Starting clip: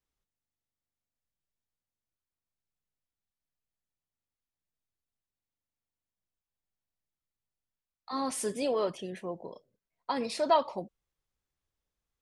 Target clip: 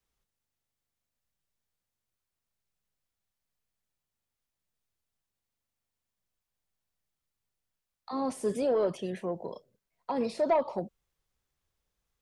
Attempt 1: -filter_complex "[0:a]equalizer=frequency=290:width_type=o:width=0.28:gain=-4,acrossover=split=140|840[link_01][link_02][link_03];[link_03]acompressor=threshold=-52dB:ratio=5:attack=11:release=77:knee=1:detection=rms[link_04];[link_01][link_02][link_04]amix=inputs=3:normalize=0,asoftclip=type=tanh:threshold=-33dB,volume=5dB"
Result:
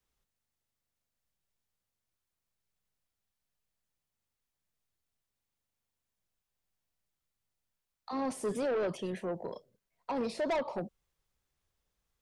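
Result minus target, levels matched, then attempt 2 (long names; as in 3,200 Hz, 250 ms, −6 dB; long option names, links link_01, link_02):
soft clipping: distortion +11 dB
-filter_complex "[0:a]equalizer=frequency=290:width_type=o:width=0.28:gain=-4,acrossover=split=140|840[link_01][link_02][link_03];[link_03]acompressor=threshold=-52dB:ratio=5:attack=11:release=77:knee=1:detection=rms[link_04];[link_01][link_02][link_04]amix=inputs=3:normalize=0,asoftclip=type=tanh:threshold=-22.5dB,volume=5dB"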